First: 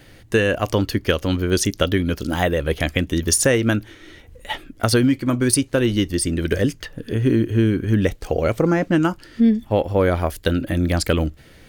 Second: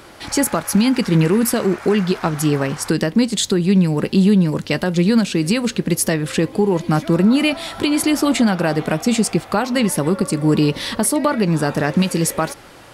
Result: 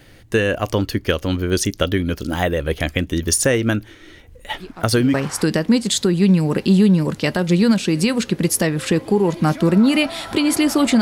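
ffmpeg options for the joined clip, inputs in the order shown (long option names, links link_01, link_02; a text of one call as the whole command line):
ffmpeg -i cue0.wav -i cue1.wav -filter_complex "[1:a]asplit=2[link_01][link_02];[0:a]apad=whole_dur=11.01,atrim=end=11.01,atrim=end=5.142[link_03];[link_02]atrim=start=2.608:end=8.48[link_04];[link_01]atrim=start=2.07:end=2.61,asetpts=PTS-STARTPTS,volume=-18dB,afade=type=in:duration=0.004:curve=hsin,afade=type=out:start_time=0.536:duration=0.004:curve=hsin,adelay=4600[link_05];[link_03][link_04]acrossfade=duration=0.004:curve1=hsin:curve2=hsin[link_06];[link_06][link_05]amix=inputs=2:normalize=0" out.wav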